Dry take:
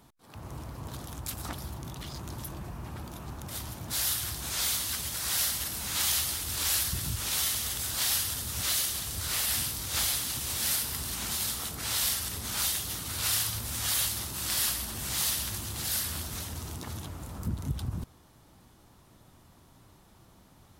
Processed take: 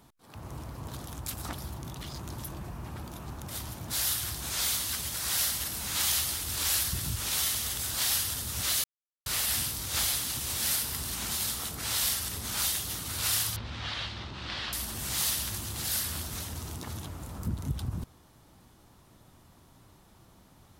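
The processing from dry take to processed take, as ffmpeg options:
ffmpeg -i in.wav -filter_complex "[0:a]asettb=1/sr,asplit=3[link_01][link_02][link_03];[link_01]atrim=end=13.564[link_04];[link_02]atrim=start=13.56:end=14.73,asetpts=PTS-STARTPTS,afade=type=in:duration=0.004:curve=qsin,afade=type=out:start_time=1.166:duration=0.004:curve=qsin,lowpass=frequency=3900:width=0.5412,lowpass=frequency=3900:width=1.3066[link_05];[link_03]atrim=start=14.726[link_06];[link_04][link_05]acrossfade=duration=0.004:curve1=hsin:curve2=qsin[link_07];[link_07][link_06]acrossfade=duration=0.004:curve1=qsin:curve2=hsin,asplit=3[link_08][link_09][link_10];[link_08]atrim=end=8.84,asetpts=PTS-STARTPTS,afade=type=out:start_time=8.836:duration=0.004:curve=hsin[link_11];[link_09]atrim=start=8.84:end=9.26,asetpts=PTS-STARTPTS,volume=0[link_12];[link_10]atrim=start=9.26,asetpts=PTS-STARTPTS,afade=type=in:duration=0.004:curve=hsin[link_13];[link_11][link_12][link_13]concat=n=3:v=0:a=1" out.wav

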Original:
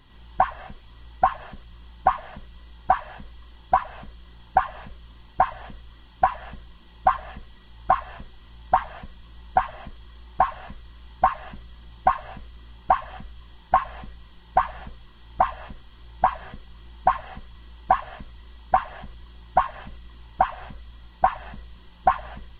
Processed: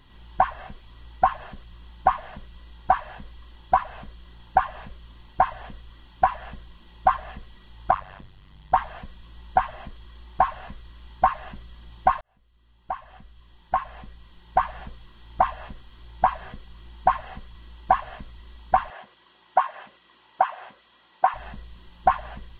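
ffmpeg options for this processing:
ffmpeg -i in.wav -filter_complex "[0:a]asettb=1/sr,asplit=3[link_01][link_02][link_03];[link_01]atrim=end=7.914[link_04];[link_02]atrim=start=7.91:end=8.74,asetpts=PTS-STARTPTS,afade=type=in:duration=0.004:curve=qsin,afade=type=out:start_time=0.826:duration=0.004:curve=qsin,tremolo=f=96:d=0.919[link_05];[link_03]atrim=start=8.736[link_06];[link_04][link_05]acrossfade=duration=0.004:curve1=hsin:curve2=qsin[link_07];[link_07][link_06]acrossfade=duration=0.004:curve1=qsin:curve2=hsin,asettb=1/sr,asplit=3[link_08][link_09][link_10];[link_08]atrim=end=18.904[link_11];[link_09]atrim=start=18.9:end=21.34,asetpts=PTS-STARTPTS,afade=type=in:duration=0.004:curve=qsin,afade=type=out:start_time=2.436:duration=0.004:curve=qsin,highpass=420,lowpass=3800[link_12];[link_10]atrim=start=21.336[link_13];[link_11][link_12]acrossfade=duration=0.004:curve1=hsin:curve2=qsin[link_14];[link_14][link_13]acrossfade=duration=0.004:curve1=qsin:curve2=hsin,asplit=2[link_15][link_16];[link_15]atrim=end=12.21,asetpts=PTS-STARTPTS,afade=type=out:start_time=12.206:duration=0.004:curve=hsin[link_17];[link_16]atrim=start=12.21,asetpts=PTS-STARTPTS,afade=type=in:duration=2.65[link_18];[link_17][link_18]concat=n=2:v=0:a=1" out.wav

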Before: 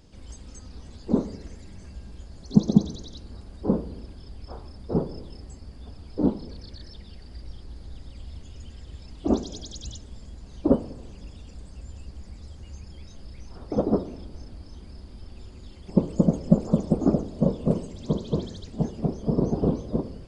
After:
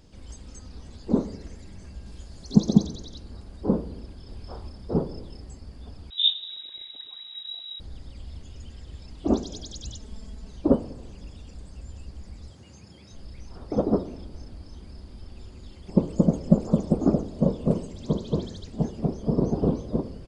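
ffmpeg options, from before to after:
ffmpeg -i in.wav -filter_complex "[0:a]asettb=1/sr,asplit=3[link_01][link_02][link_03];[link_01]atrim=end=2.064[link_04];[link_02]atrim=start=2.06:end=2.87,asetpts=PTS-STARTPTS,afade=type=in:duration=0.004:curve=qsin,afade=type=out:start_time=0.806:duration=0.004:curve=qsin,highshelf=frequency=2900:gain=6[link_05];[link_03]atrim=start=2.866[link_06];[link_04][link_05]acrossfade=duration=0.004:curve1=hsin:curve2=qsin[link_07];[link_07][link_06]acrossfade=duration=0.004:curve1=qsin:curve2=hsin,asplit=2[link_08][link_09];[link_09]afade=type=in:start_time=4:duration=0.01,afade=type=out:start_time=4.41:duration=0.01,aecho=0:1:280|560|840|1120|1400|1680|1960|2240:0.707946|0.38937|0.214154|0.117784|0.0647815|0.0356298|0.0195964|0.010778[link_10];[link_08][link_10]amix=inputs=2:normalize=0,asettb=1/sr,asplit=3[link_11][link_12][link_13];[link_11]atrim=end=6.104[link_14];[link_12]atrim=start=6.1:end=7.8,asetpts=PTS-STARTPTS,afade=type=in:duration=0.004:curve=qsin,afade=type=out:start_time=1.696:duration=0.004:curve=qsin,lowpass=frequency=3300:width_type=q:width=0.5098,lowpass=frequency=3300:width_type=q:width=0.6013,lowpass=frequency=3300:width_type=q:width=0.9,lowpass=frequency=3300:width_type=q:width=2.563,afreqshift=-3900[link_15];[link_13]atrim=start=7.796[link_16];[link_14][link_15]acrossfade=duration=0.004:curve1=hsin:curve2=qsin[link_17];[link_17][link_16]acrossfade=duration=0.004:curve1=qsin:curve2=hsin,asettb=1/sr,asplit=3[link_18][link_19][link_20];[link_18]atrim=end=10.004[link_21];[link_19]atrim=start=10:end=10.52,asetpts=PTS-STARTPTS,afade=type=in:duration=0.004:curve=qsin,afade=type=out:start_time=0.516:duration=0.004:curve=qsin,aecho=1:1:4.6:0.71,atrim=end_sample=22932[link_22];[link_20]atrim=start=10.516[link_23];[link_21][link_22]acrossfade=duration=0.004:curve1=hsin:curve2=qsin[link_24];[link_24][link_23]acrossfade=duration=0.004:curve1=qsin:curve2=hsin,asettb=1/sr,asplit=3[link_25][link_26][link_27];[link_25]atrim=end=12.504[link_28];[link_26]atrim=start=12.5:end=13.11,asetpts=PTS-STARTPTS,afade=type=in:duration=0.004:curve=qsin,afade=type=out:start_time=0.606:duration=0.004:curve=qsin,highpass=frequency=100:width=0.5412,highpass=frequency=100:width=1.3066[link_29];[link_27]atrim=start=13.106[link_30];[link_28][link_29]acrossfade=duration=0.004:curve1=hsin:curve2=qsin[link_31];[link_31][link_30]acrossfade=duration=0.004:curve1=qsin:curve2=hsin" out.wav

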